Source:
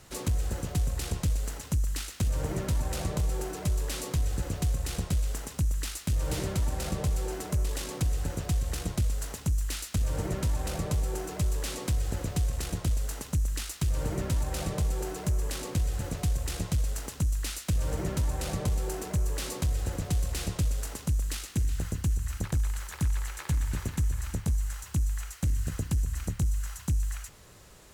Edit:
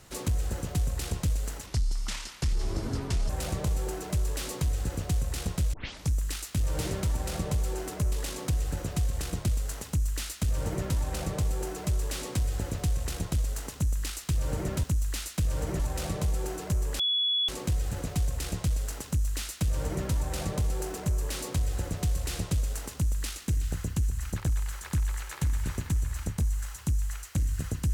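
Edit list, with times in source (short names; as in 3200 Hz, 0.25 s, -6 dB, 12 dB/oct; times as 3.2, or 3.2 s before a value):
1.66–2.82 speed 71%
5.26 tape start 0.39 s
15.56 add tone 3390 Hz -23.5 dBFS 0.49 s
17.14–18.1 copy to 14.36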